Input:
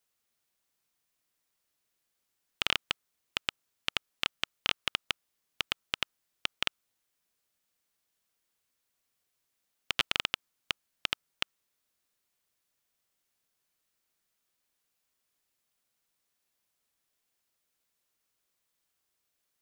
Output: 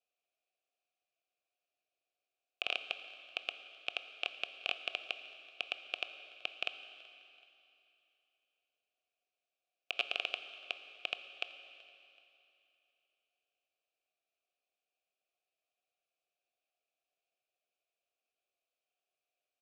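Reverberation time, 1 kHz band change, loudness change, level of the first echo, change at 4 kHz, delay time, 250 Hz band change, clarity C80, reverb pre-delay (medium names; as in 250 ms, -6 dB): 2.8 s, -7.0 dB, -5.5 dB, -23.0 dB, -7.0 dB, 379 ms, -13.5 dB, 10.5 dB, 18 ms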